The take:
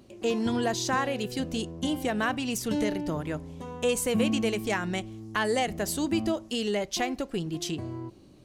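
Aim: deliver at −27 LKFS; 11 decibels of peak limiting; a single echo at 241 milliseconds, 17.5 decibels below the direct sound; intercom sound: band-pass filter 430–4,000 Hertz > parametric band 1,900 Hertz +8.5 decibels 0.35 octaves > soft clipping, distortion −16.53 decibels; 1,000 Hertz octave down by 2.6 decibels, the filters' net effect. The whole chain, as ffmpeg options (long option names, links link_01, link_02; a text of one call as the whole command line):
ffmpeg -i in.wav -af "equalizer=frequency=1000:width_type=o:gain=-3.5,alimiter=level_in=1dB:limit=-24dB:level=0:latency=1,volume=-1dB,highpass=430,lowpass=4000,equalizer=frequency=1900:width_type=o:width=0.35:gain=8.5,aecho=1:1:241:0.133,asoftclip=threshold=-28.5dB,volume=12dB" out.wav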